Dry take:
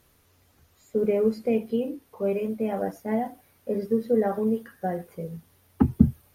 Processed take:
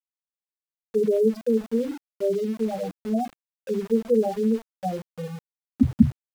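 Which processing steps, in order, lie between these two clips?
spectral peaks only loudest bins 4
centre clipping without the shift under −40 dBFS
level +3 dB

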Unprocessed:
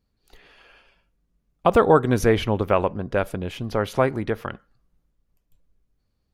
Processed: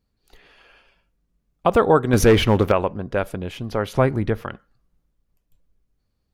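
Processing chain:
0:02.13–0:02.72: leveller curve on the samples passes 2
0:03.95–0:04.44: low-shelf EQ 190 Hz +10 dB

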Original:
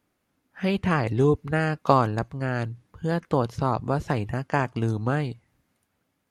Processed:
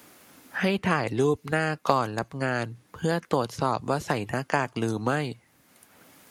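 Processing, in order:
high-pass filter 250 Hz 6 dB per octave
high-shelf EQ 3,900 Hz +8.5 dB
multiband upward and downward compressor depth 70%

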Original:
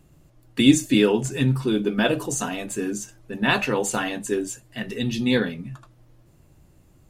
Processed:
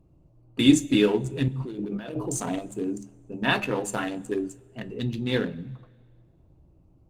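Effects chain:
adaptive Wiener filter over 25 samples
mains-hum notches 50/100/150/200/250/300/350/400 Hz
0:01.48–0:02.59: compressor whose output falls as the input rises −30 dBFS, ratio −1
coupled-rooms reverb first 0.21 s, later 1.7 s, from −19 dB, DRR 9.5 dB
level −2 dB
Opus 32 kbit/s 48,000 Hz

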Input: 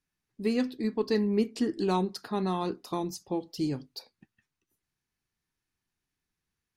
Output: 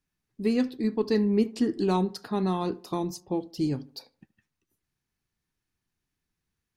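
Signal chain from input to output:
low-shelf EQ 380 Hz +4.5 dB
tape delay 74 ms, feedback 45%, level −20 dB, low-pass 2,000 Hz
0:03.20–0:03.71: one half of a high-frequency compander decoder only

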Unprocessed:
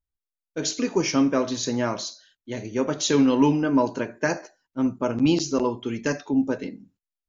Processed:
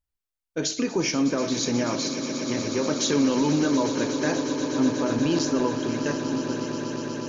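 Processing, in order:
fade-out on the ending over 2.29 s
brickwall limiter −17 dBFS, peak gain reduction 8.5 dB
echo that builds up and dies away 121 ms, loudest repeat 8, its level −13.5 dB
level +1.5 dB

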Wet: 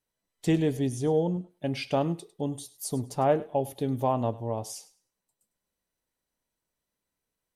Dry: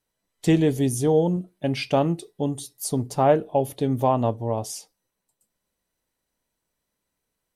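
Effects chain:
0:00.77–0:01.50: Bessel low-pass filter 6,300 Hz, order 2
feedback echo with a high-pass in the loop 102 ms, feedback 22%, high-pass 620 Hz, level −17 dB
level −5.5 dB

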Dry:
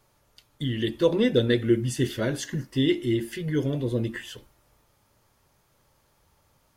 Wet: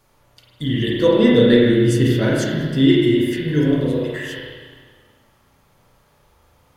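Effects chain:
0:03.86–0:04.27: Butterworth high-pass 390 Hz 72 dB per octave
spring reverb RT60 1.6 s, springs 33/37 ms, chirp 20 ms, DRR −4 dB
level +3.5 dB

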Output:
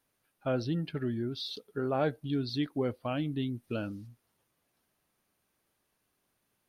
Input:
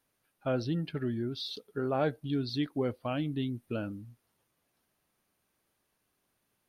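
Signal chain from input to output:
0:03.63–0:04.06: parametric band 5,000 Hz +5.5 dB → +13.5 dB 1.2 octaves

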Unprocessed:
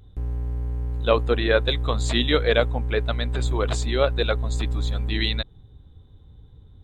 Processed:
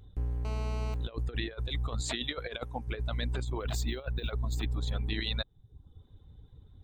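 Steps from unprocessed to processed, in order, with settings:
reverb reduction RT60 0.67 s
0:02.01–0:02.88: low-shelf EQ 180 Hz −11.5 dB
compressor whose output falls as the input rises −26 dBFS, ratio −0.5
0:00.45–0:00.94: phone interference −36 dBFS
0:03.48–0:04.68: linearly interpolated sample-rate reduction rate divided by 2×
level −6 dB

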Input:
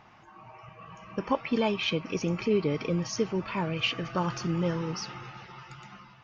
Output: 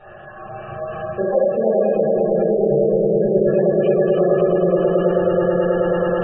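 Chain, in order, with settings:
feedback delay that plays each chunk backwards 442 ms, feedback 54%, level −12 dB
treble cut that deepens with the level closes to 590 Hz, closed at −23 dBFS
dynamic equaliser 120 Hz, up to −4 dB, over −44 dBFS, Q 1.3
echo that builds up and dies away 107 ms, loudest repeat 5, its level −6 dB
reversed playback
downward compressor 6 to 1, threshold −33 dBFS, peak gain reduction 12 dB
reversed playback
phaser with its sweep stopped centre 1,400 Hz, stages 8
hollow resonant body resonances 340/580/1,700 Hz, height 17 dB, ringing for 30 ms
convolution reverb RT60 0.80 s, pre-delay 5 ms, DRR −10.5 dB
gate on every frequency bin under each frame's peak −25 dB strong

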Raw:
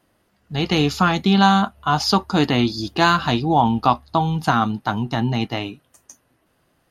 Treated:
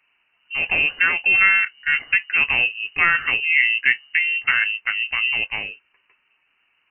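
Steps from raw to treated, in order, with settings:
voice inversion scrambler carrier 2,900 Hz
low-shelf EQ 290 Hz −8.5 dB
level −1 dB

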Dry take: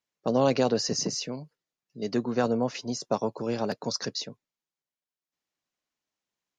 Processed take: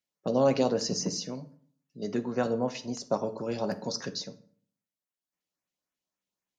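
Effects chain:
auto-filter notch saw up 3.7 Hz 880–5,500 Hz
on a send: convolution reverb RT60 0.55 s, pre-delay 3 ms, DRR 8 dB
on the sum: level −2.5 dB

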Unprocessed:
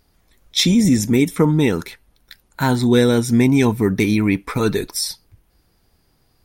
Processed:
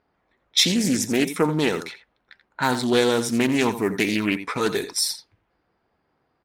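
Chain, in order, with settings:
high-pass filter 510 Hz 6 dB per octave
on a send: single-tap delay 85 ms −12 dB
on the sum: low-pass that shuts in the quiet parts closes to 1,600 Hz, open at −20 dBFS
highs frequency-modulated by the lows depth 0.23 ms

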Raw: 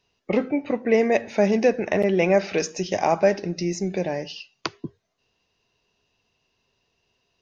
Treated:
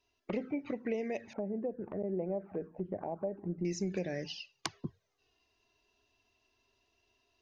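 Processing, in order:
downward compressor 10 to 1, threshold −25 dBFS, peak gain reduction 13 dB
0:01.33–0:03.65: low-pass filter 1,100 Hz 24 dB per octave
flanger swept by the level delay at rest 3 ms, full sweep at −23.5 dBFS
speech leveller within 4 dB 2 s
level −5 dB

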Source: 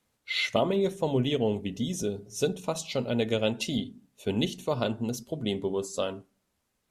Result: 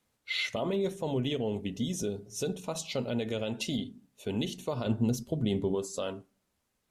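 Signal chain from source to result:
brickwall limiter −20.5 dBFS, peak gain reduction 9 dB
0:04.86–0:05.75: low-shelf EQ 250 Hz +9.5 dB
level −1.5 dB

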